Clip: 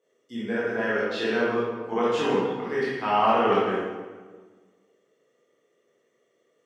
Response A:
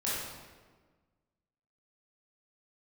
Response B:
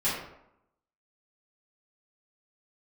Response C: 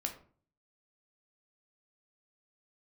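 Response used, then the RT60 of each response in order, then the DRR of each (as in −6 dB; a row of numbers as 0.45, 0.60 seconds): A; 1.5, 0.80, 0.45 seconds; −9.0, −12.5, 3.0 decibels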